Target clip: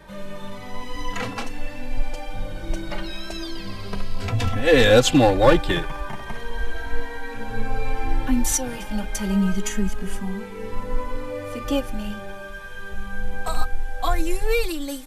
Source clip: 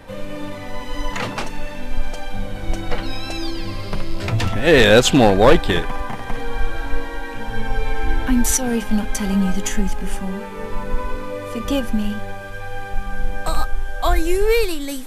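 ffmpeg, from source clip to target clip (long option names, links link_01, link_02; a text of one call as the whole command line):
ffmpeg -i in.wav -filter_complex "[0:a]asplit=2[link_01][link_02];[link_02]adelay=2.8,afreqshift=0.32[link_03];[link_01][link_03]amix=inputs=2:normalize=1,volume=-1dB" out.wav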